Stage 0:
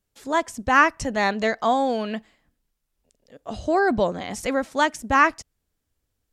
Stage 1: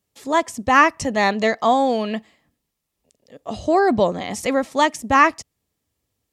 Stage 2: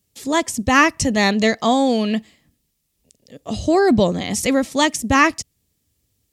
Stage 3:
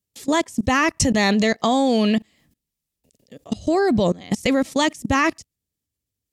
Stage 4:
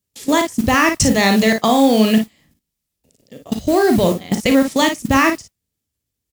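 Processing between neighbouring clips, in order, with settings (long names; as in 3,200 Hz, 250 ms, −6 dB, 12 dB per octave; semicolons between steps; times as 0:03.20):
high-pass filter 81 Hz 12 dB per octave; notch filter 1,500 Hz, Q 5.9; level +4 dB
parametric band 930 Hz −12 dB 2.6 octaves; level +9 dB
output level in coarse steps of 22 dB; level +4.5 dB
noise that follows the level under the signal 20 dB; ambience of single reflections 37 ms −9.5 dB, 55 ms −8 dB; level +3.5 dB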